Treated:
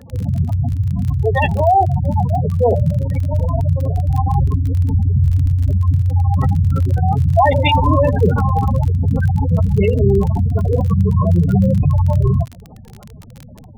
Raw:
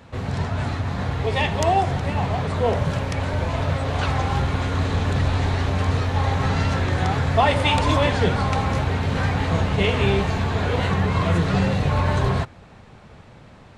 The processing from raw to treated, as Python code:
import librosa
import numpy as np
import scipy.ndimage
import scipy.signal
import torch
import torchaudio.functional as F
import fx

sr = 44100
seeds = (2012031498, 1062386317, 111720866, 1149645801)

y = fx.fold_sine(x, sr, drive_db=5, ceiling_db=-4.5)
y = fx.spec_gate(y, sr, threshold_db=-10, keep='strong')
y = fx.dmg_crackle(y, sr, seeds[0], per_s=30.0, level_db=-23.0)